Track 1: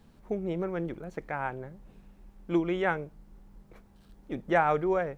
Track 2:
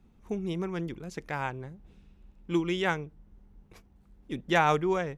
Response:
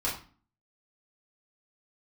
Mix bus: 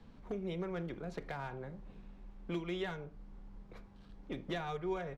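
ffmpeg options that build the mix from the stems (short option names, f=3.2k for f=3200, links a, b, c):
-filter_complex "[0:a]lowpass=4.7k,acrossover=split=150|1800[a][b][c];[a]acompressor=threshold=-51dB:ratio=4[d];[b]acompressor=threshold=-39dB:ratio=4[e];[c]acompressor=threshold=-50dB:ratio=4[f];[d][e][f]amix=inputs=3:normalize=0,volume=30.5dB,asoftclip=hard,volume=-30.5dB,volume=-1dB,asplit=2[g][h];[h]volume=-15.5dB[i];[1:a]equalizer=f=3.9k:t=o:w=0.44:g=12.5,adelay=4.6,volume=-16.5dB[j];[2:a]atrim=start_sample=2205[k];[i][k]afir=irnorm=-1:irlink=0[l];[g][j][l]amix=inputs=3:normalize=0,acrossover=split=470[m][n];[n]acompressor=threshold=-39dB:ratio=6[o];[m][o]amix=inputs=2:normalize=0"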